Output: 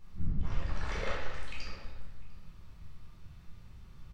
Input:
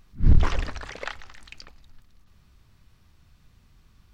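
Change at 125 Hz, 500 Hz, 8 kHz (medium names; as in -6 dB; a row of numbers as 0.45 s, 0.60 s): -12.5 dB, -3.5 dB, no reading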